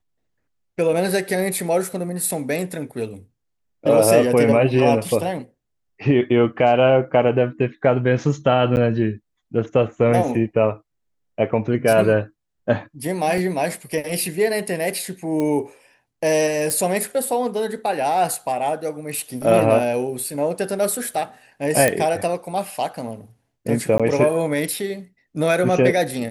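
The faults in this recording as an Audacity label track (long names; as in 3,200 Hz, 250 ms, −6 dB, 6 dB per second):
8.760000	8.770000	drop-out 9.7 ms
13.380000	13.380000	drop-out 2.3 ms
15.400000	15.400000	click −13 dBFS
16.700000	16.700000	click
21.880000	21.880000	click −4 dBFS
23.980000	24.000000	drop-out 16 ms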